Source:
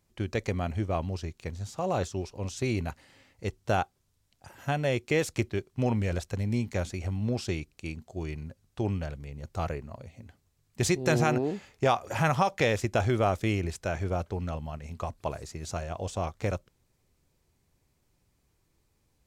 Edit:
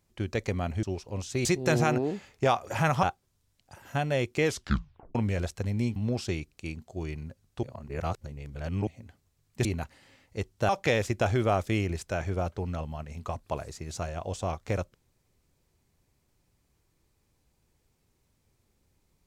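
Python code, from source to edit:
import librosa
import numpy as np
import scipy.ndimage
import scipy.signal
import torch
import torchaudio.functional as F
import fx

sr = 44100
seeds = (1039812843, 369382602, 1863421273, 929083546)

y = fx.edit(x, sr, fx.cut(start_s=0.83, length_s=1.27),
    fx.swap(start_s=2.72, length_s=1.04, other_s=10.85, other_length_s=1.58),
    fx.tape_stop(start_s=5.17, length_s=0.71),
    fx.cut(start_s=6.69, length_s=0.47),
    fx.reverse_span(start_s=8.83, length_s=1.24), tone=tone)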